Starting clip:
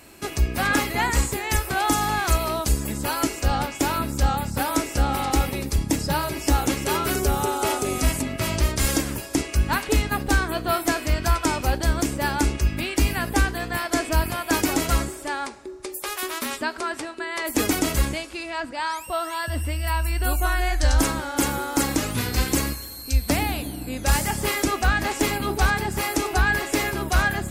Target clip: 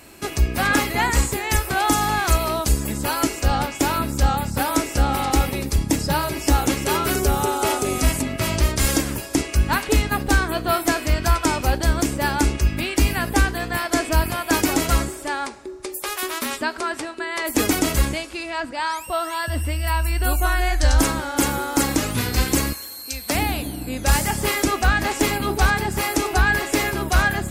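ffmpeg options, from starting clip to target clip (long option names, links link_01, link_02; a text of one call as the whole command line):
ffmpeg -i in.wav -filter_complex "[0:a]asettb=1/sr,asplit=3[link_01][link_02][link_03];[link_01]atrim=end=22.734[link_04];[link_02]atrim=start=22.73:end=23.35,asetpts=PTS-STARTPTS,afade=type=in:duration=0.004:curve=qsin,afade=type=out:start_time=0.616:duration=0.004:curve=qsin,highpass=frequency=550:poles=1[link_05];[link_03]atrim=start=23.346[link_06];[link_04][link_05]acrossfade=duration=0.004:curve1=hsin:curve2=qsin[link_07];[link_07][link_06]acrossfade=duration=0.004:curve1=qsin:curve2=hsin,volume=2.5dB" out.wav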